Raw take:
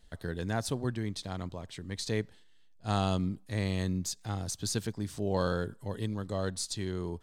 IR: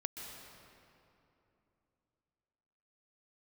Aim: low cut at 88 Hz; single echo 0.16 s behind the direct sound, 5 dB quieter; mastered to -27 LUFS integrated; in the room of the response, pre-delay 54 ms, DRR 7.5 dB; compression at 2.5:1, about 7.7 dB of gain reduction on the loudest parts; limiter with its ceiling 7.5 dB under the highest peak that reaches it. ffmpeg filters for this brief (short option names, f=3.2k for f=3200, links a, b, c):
-filter_complex "[0:a]highpass=88,acompressor=threshold=-37dB:ratio=2.5,alimiter=level_in=5dB:limit=-24dB:level=0:latency=1,volume=-5dB,aecho=1:1:160:0.562,asplit=2[a][b];[1:a]atrim=start_sample=2205,adelay=54[c];[b][c]afir=irnorm=-1:irlink=0,volume=-7dB[d];[a][d]amix=inputs=2:normalize=0,volume=12dB"